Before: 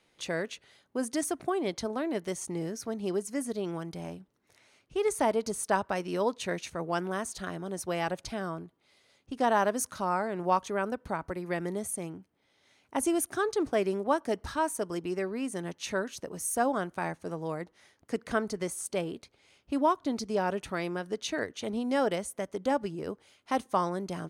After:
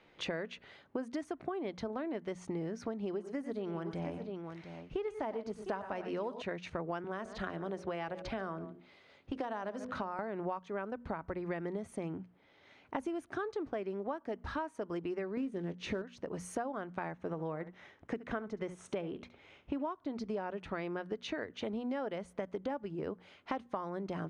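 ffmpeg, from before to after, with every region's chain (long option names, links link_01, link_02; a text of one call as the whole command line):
ffmpeg -i in.wav -filter_complex "[0:a]asettb=1/sr,asplit=3[link_01][link_02][link_03];[link_01]atrim=end=3.044[link_04];[link_02]atrim=start=3.04:end=6.42,asetpts=PTS-STARTPTS,afade=type=in:duration=0.004:curve=qsin,afade=type=out:start_time=3.376:duration=0.004:curve=qsin,deesser=0.7,aecho=1:1:94|122|704:0.188|0.178|0.178,atrim=end_sample=149058[link_05];[link_03]atrim=start=6.416[link_06];[link_04][link_05]acrossfade=duration=0.004:curve1=hsin:curve2=qsin[link_07];[link_07][link_06]acrossfade=duration=0.004:curve1=qsin:curve2=hsin,asettb=1/sr,asplit=3[link_08][link_09][link_10];[link_08]atrim=end=7.044[link_11];[link_09]atrim=start=7.04:end=10.19,asetpts=PTS-STARTPTS,afade=type=in:duration=0.004:curve=qsin,afade=type=out:start_time=3.146:duration=0.004:curve=qsin,bandreject=frequency=50.3:width_type=h:width=4,bandreject=frequency=100.6:width_type=h:width=4,bandreject=frequency=150.9:width_type=h:width=4,bandreject=frequency=201.2:width_type=h:width=4,bandreject=frequency=251.5:width_type=h:width=4,bandreject=frequency=301.8:width_type=h:width=4,bandreject=frequency=352.1:width_type=h:width=4,bandreject=frequency=402.4:width_type=h:width=4,bandreject=frequency=452.7:width_type=h:width=4,bandreject=frequency=503:width_type=h:width=4,bandreject=frequency=553.3:width_type=h:width=4,bandreject=frequency=603.6:width_type=h:width=4,bandreject=frequency=653.9:width_type=h:width=4,bandreject=frequency=704.2:width_type=h:width=4,aecho=1:1:140:0.0891,atrim=end_sample=138915,acrossover=split=290|4500[link_12][link_13][link_14];[link_12]acompressor=threshold=-43dB:ratio=4[link_15];[link_13]acompressor=threshold=-32dB:ratio=4[link_16];[link_14]acompressor=threshold=-47dB:ratio=4[link_17];[link_15][link_16][link_17]amix=inputs=3:normalize=0[link_18];[link_10]atrim=start=10.186[link_19];[link_11][link_18]acrossfade=duration=0.004:curve1=hsin:curve2=qsin[link_20];[link_20][link_19]acrossfade=duration=0.004:curve1=qsin:curve2=hsin,asettb=1/sr,asplit=3[link_21][link_22][link_23];[link_21]atrim=end=15.374[link_24];[link_22]atrim=start=15.37:end=16.02,asetpts=PTS-STARTPTS,afade=type=in:duration=0.004:curve=qsin,afade=type=out:start_time=0.646:duration=0.004:curve=qsin,acrusher=bits=4:mode=log:mix=0:aa=0.000001,lowshelf=frequency=560:width_type=q:width=1.5:gain=7,asplit=2[link_25][link_26];[link_26]adelay=22,volume=-13.5dB[link_27];[link_25][link_27]amix=inputs=2:normalize=0,atrim=end_sample=28665[link_28];[link_23]atrim=start=16.016[link_29];[link_24][link_28]acrossfade=duration=0.004:curve1=hsin:curve2=qsin[link_30];[link_30][link_29]acrossfade=duration=0.004:curve1=qsin:curve2=hsin,asettb=1/sr,asplit=3[link_31][link_32][link_33];[link_31]atrim=end=17.144[link_34];[link_32]atrim=start=17.14:end=19.85,asetpts=PTS-STARTPTS,afade=type=in:duration=0.004:curve=qsin,afade=type=out:start_time=2.706:duration=0.004:curve=qsin,lowpass=9000,equalizer=frequency=4600:width=7.6:gain=-11.5,aecho=1:1:70:0.15,atrim=end_sample=119511[link_35];[link_33]atrim=start=19.846[link_36];[link_34][link_35]acrossfade=duration=0.004:curve1=hsin:curve2=qsin[link_37];[link_37][link_36]acrossfade=duration=0.004:curve1=qsin:curve2=hsin,lowpass=2700,bandreject=frequency=60:width_type=h:width=6,bandreject=frequency=120:width_type=h:width=6,bandreject=frequency=180:width_type=h:width=6,bandreject=frequency=240:width_type=h:width=6,acompressor=threshold=-41dB:ratio=12,volume=6.5dB" out.wav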